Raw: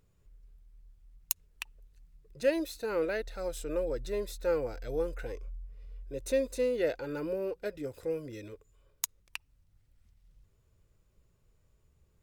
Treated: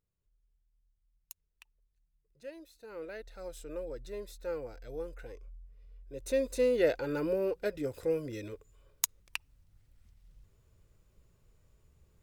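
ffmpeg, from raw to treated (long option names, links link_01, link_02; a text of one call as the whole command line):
ffmpeg -i in.wav -af "volume=3dB,afade=type=in:start_time=2.72:duration=0.71:silence=0.298538,afade=type=in:start_time=6.04:duration=0.7:silence=0.298538" out.wav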